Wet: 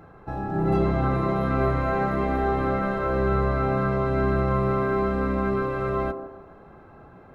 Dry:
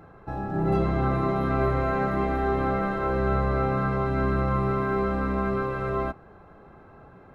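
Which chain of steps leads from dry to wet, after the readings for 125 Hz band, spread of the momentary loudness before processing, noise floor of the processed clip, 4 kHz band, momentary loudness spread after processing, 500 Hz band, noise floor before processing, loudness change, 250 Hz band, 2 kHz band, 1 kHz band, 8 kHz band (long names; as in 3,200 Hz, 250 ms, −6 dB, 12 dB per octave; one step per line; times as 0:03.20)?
+1.0 dB, 4 LU, −49 dBFS, +1.0 dB, 5 LU, +2.0 dB, −51 dBFS, +1.5 dB, +1.5 dB, +1.0 dB, +1.0 dB, can't be measured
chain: delay with a band-pass on its return 150 ms, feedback 37%, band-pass 430 Hz, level −6.5 dB
level +1 dB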